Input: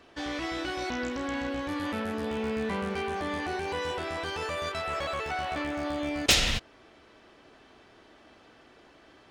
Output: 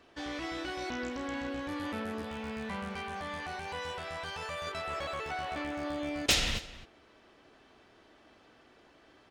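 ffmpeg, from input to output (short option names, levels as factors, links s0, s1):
-filter_complex "[0:a]asettb=1/sr,asplit=3[s0][s1][s2];[s0]atrim=end=2.224[s3];[s1]atrim=start=2.22:end=4.67,asetpts=PTS-STARTPTS,afade=t=in:d=0.004:c=qsin,afade=t=out:st=2.446:d=0.004:c=qsin,equalizer=f=340:t=o:w=0.59:g=-14[s4];[s2]atrim=start=4.666[s5];[s3][s4]acrossfade=d=0.004:c1=hsin:c2=qsin[s6];[s6][s5]acrossfade=d=0.004:c1=qsin:c2=hsin,asplit=2[s7][s8];[s8]adelay=262.4,volume=0.158,highshelf=f=4000:g=-5.9[s9];[s7][s9]amix=inputs=2:normalize=0,volume=0.596"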